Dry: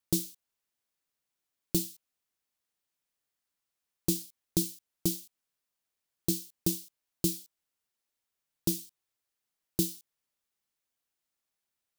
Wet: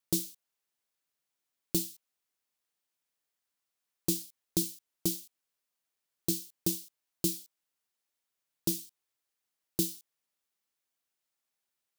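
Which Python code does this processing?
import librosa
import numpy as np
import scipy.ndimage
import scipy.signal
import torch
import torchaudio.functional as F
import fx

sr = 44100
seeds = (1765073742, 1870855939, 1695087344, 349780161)

y = fx.low_shelf(x, sr, hz=170.0, db=-7.0)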